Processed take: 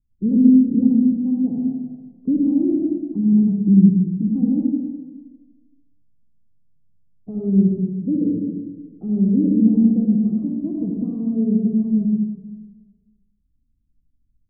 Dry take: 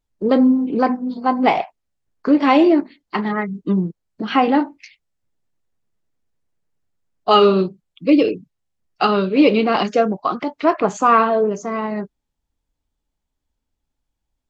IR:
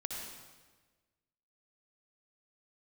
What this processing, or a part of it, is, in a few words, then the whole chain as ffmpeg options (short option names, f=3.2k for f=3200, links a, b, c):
club heard from the street: -filter_complex "[0:a]alimiter=limit=-9dB:level=0:latency=1:release=202,lowpass=f=230:w=0.5412,lowpass=f=230:w=1.3066[a];[1:a]atrim=start_sample=2205[b];[a][b]afir=irnorm=-1:irlink=0,volume=9dB"